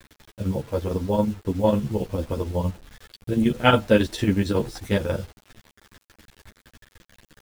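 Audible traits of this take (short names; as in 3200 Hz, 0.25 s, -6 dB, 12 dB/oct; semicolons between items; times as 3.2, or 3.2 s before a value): chopped level 11 Hz, depth 60%, duty 65%; a quantiser's noise floor 8-bit, dither none; a shimmering, thickened sound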